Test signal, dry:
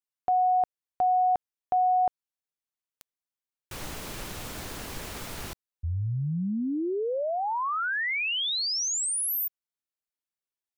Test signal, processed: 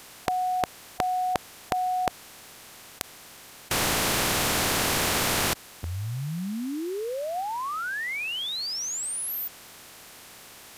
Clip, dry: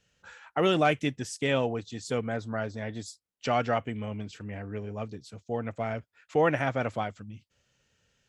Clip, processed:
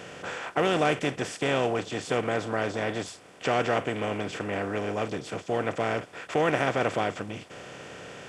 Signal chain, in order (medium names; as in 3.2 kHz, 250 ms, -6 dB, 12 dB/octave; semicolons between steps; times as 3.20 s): spectral levelling over time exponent 0.4; trim -4 dB